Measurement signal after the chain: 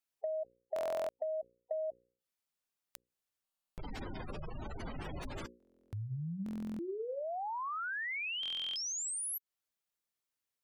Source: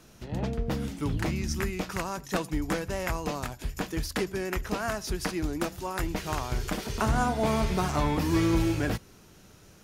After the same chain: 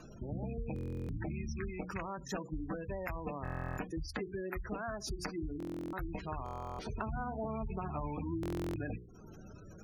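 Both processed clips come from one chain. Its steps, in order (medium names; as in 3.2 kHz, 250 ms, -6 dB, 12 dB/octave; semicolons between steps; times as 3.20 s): rattle on loud lows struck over -29 dBFS, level -25 dBFS; hum notches 60/120/180/240/300/360/420/480/540 Hz; spectral gate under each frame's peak -15 dB strong; compression 4:1, threshold -43 dBFS; buffer glitch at 0.74/3.43/5.58/6.44/8.41 s, samples 1024, times 14; trim +4.5 dB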